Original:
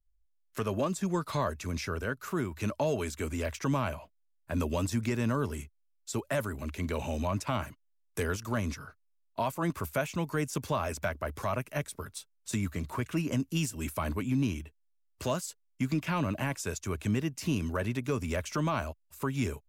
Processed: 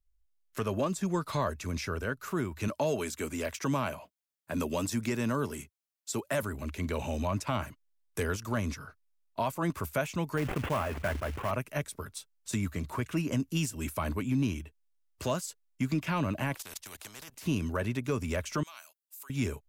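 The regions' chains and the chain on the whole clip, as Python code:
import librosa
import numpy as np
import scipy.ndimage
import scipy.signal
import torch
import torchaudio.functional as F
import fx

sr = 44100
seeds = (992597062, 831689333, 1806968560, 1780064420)

y = fx.chain(x, sr, fx.highpass(hz=130.0, slope=12),
    fx.high_shelf(hz=5400.0, db=4.0), at=(2.68, 6.43))
y = fx.chain(y, sr, fx.cvsd(bps=16000),
    fx.quant_float(bits=2),
    fx.sustainer(db_per_s=48.0), at=(10.37, 11.51))
y = fx.chain(y, sr, fx.level_steps(step_db=19),
    fx.spectral_comp(ratio=4.0), at=(16.54, 17.46))
y = fx.chain(y, sr, fx.highpass(hz=980.0, slope=6),
    fx.differentiator(), at=(18.63, 19.3))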